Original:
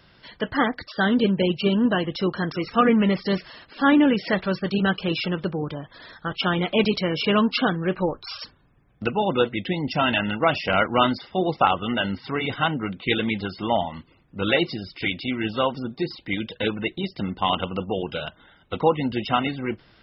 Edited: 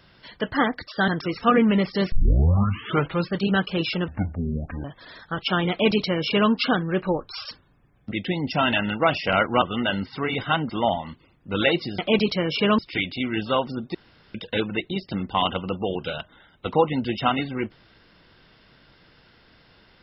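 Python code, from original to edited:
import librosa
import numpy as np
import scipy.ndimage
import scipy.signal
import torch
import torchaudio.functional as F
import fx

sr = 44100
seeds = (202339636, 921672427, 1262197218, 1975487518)

y = fx.edit(x, sr, fx.cut(start_s=1.08, length_s=1.31),
    fx.tape_start(start_s=3.43, length_s=1.18),
    fx.speed_span(start_s=5.39, length_s=0.39, speed=0.51),
    fx.duplicate(start_s=6.64, length_s=0.8, to_s=14.86),
    fx.cut(start_s=9.05, length_s=0.47),
    fx.cut(start_s=11.02, length_s=0.71),
    fx.cut(start_s=12.81, length_s=0.76),
    fx.room_tone_fill(start_s=16.02, length_s=0.4), tone=tone)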